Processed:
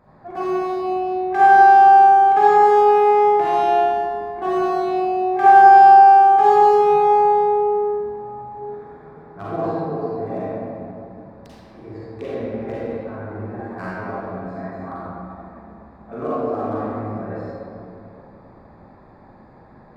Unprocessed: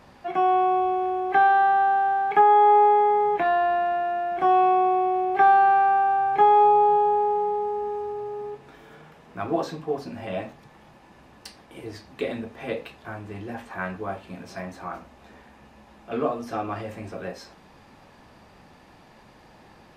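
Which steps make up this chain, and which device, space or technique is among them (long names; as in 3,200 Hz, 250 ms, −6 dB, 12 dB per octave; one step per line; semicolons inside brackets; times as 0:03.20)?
adaptive Wiener filter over 15 samples
stairwell (convolution reverb RT60 2.7 s, pre-delay 35 ms, DRR −9 dB)
0:06.03–0:06.53: high-pass filter 370 Hz → 170 Hz 12 dB per octave
level −4.5 dB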